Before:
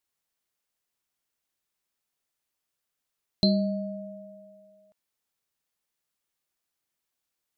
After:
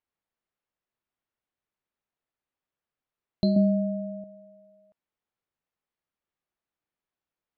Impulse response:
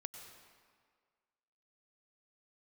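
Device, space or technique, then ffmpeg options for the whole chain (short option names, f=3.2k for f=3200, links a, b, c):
phone in a pocket: -filter_complex "[0:a]asettb=1/sr,asplit=3[a][b][c];[a]atrim=end=3.564[d];[b]atrim=start=3.56:end=4.24,asetpts=PTS-STARTPTS,afade=t=in:d=0.004:c=qsin,afade=t=out:st=0.676:d=0.004:c=qsin,equalizer=f=310:t=o:w=2.1:g=9.5[e];[c]atrim=start=4.236[f];[d][e]acrossfade=d=0.004:c1=hsin:c2=qsin[g];[g][f]acrossfade=d=0.004:c1=qsin:c2=hsin,lowpass=3.4k,highshelf=f=2.1k:g=-8.5"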